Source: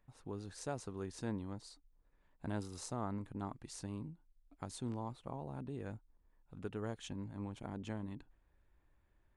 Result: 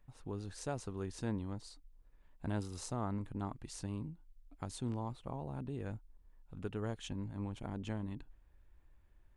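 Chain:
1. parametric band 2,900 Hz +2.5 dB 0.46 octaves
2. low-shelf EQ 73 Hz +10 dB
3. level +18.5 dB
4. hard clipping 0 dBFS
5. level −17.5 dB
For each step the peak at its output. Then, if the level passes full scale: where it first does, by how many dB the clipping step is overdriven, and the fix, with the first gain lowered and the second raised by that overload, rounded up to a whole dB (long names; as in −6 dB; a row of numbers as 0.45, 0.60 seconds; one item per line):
−24.5, −23.5, −5.0, −5.0, −22.5 dBFS
no step passes full scale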